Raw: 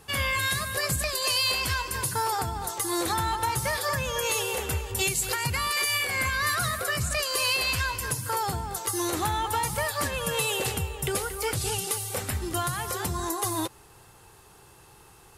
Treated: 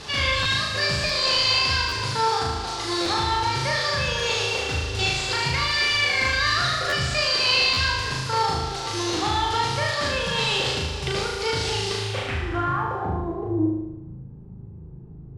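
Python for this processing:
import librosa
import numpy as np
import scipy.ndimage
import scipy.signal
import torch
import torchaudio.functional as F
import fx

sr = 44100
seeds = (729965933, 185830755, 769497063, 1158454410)

y = fx.delta_mod(x, sr, bps=64000, step_db=-34.0)
y = fx.filter_sweep_lowpass(y, sr, from_hz=4700.0, to_hz=180.0, start_s=11.91, end_s=13.92, q=2.1)
y = fx.room_flutter(y, sr, wall_m=6.5, rt60_s=0.96)
y = fx.buffer_glitch(y, sr, at_s=(0.42, 1.06, 1.88, 3.02, 6.89, 7.73), block=512, repeats=2)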